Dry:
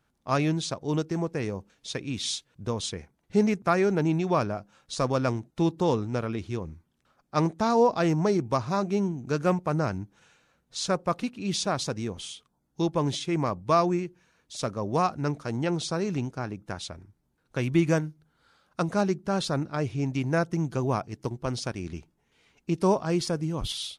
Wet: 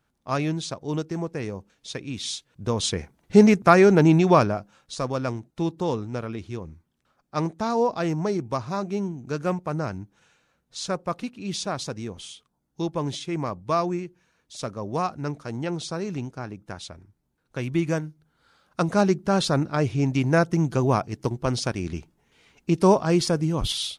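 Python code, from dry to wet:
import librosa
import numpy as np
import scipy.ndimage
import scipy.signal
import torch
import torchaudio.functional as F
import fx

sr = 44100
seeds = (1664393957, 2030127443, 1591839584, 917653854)

y = fx.gain(x, sr, db=fx.line((2.37, -0.5), (2.96, 8.5), (4.31, 8.5), (4.99, -1.5), (18.0, -1.5), (19.09, 5.5)))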